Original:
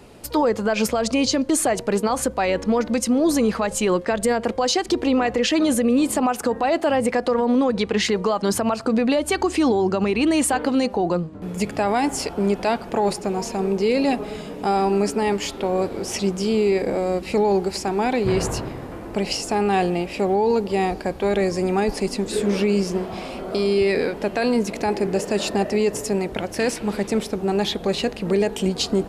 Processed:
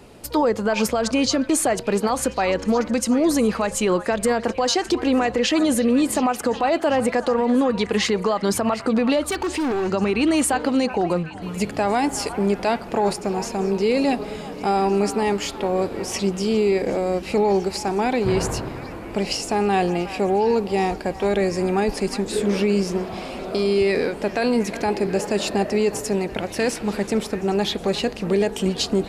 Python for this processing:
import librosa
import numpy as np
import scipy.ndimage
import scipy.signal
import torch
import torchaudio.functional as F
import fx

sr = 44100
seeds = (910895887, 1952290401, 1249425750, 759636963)

y = fx.overload_stage(x, sr, gain_db=20.5, at=(9.21, 9.93))
y = fx.echo_stepped(y, sr, ms=366, hz=1200.0, octaves=0.7, feedback_pct=70, wet_db=-9.5)